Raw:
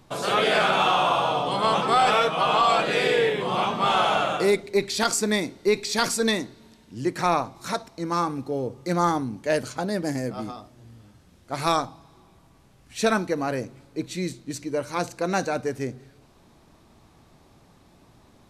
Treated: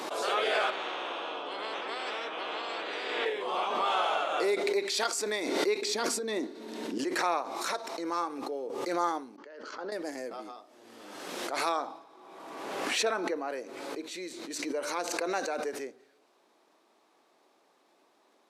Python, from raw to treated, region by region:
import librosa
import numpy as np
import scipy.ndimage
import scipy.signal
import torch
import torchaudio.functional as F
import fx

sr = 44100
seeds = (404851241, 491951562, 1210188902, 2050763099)

y = fx.chain(x, sr, fx.bandpass_q(hz=320.0, q=1.5),
    fx.spectral_comp(ratio=4.0), at=(0.7, 3.26))
y = fx.chain(y, sr, fx.peak_eq(hz=250.0, db=13.5, octaves=1.9),
    fx.over_compress(threshold_db=-21.0, ratio=-1.0), at=(5.82, 6.98))
y = fx.chain(y, sr, fx.level_steps(step_db=19),
    fx.cabinet(low_hz=200.0, low_slope=12, high_hz=4700.0, hz=(700.0, 1300.0, 2400.0, 3800.0), db=(-8, 4, -9, -9)), at=(9.36, 9.92))
y = fx.chain(y, sr, fx.high_shelf(hz=3000.0, db=-8.5),
    fx.sustainer(db_per_s=82.0), at=(11.69, 13.5))
y = scipy.signal.sosfilt(scipy.signal.butter(4, 340.0, 'highpass', fs=sr, output='sos'), y)
y = fx.high_shelf(y, sr, hz=6800.0, db=-5.5)
y = fx.pre_swell(y, sr, db_per_s=32.0)
y = y * librosa.db_to_amplitude(-7.0)